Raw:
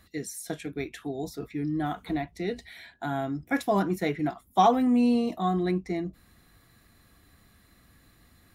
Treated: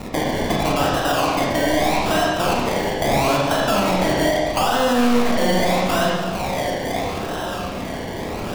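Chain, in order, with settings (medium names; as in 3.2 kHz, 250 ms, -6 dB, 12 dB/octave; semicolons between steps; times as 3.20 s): comb filter that takes the minimum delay 1.2 ms; rotary cabinet horn 0.8 Hz; overdrive pedal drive 37 dB, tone 3.3 kHz, clips at -10.5 dBFS; feedback echo behind a band-pass 952 ms, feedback 46%, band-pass 900 Hz, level -18 dB; compression, threshold -30 dBFS, peak gain reduction 14 dB; peaking EQ 4.7 kHz -5.5 dB 1.4 oct; decimation with a swept rate 27×, swing 60% 0.78 Hz; reverberation RT60 1.3 s, pre-delay 29 ms, DRR -3 dB; loudness maximiser +16.5 dB; trim -8 dB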